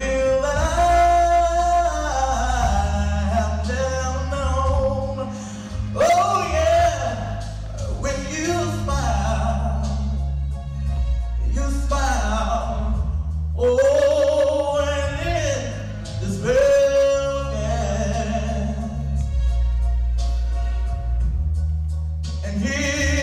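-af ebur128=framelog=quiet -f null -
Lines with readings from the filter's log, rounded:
Integrated loudness:
  I:         -21.5 LUFS
  Threshold: -31.6 LUFS
Loudness range:
  LRA:         4.2 LU
  Threshold: -41.8 LUFS
  LRA low:   -24.0 LUFS
  LRA high:  -19.8 LUFS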